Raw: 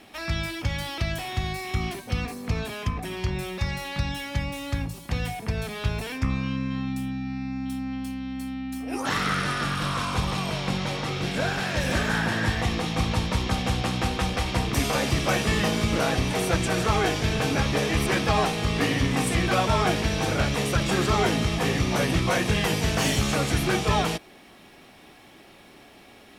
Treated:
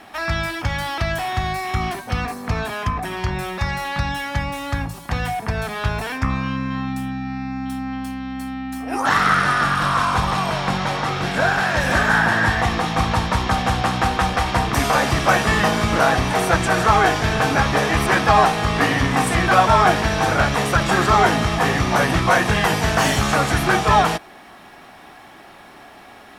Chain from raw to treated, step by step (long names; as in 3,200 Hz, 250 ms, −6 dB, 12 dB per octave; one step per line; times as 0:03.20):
flat-topped bell 1,100 Hz +8 dB
level +3.5 dB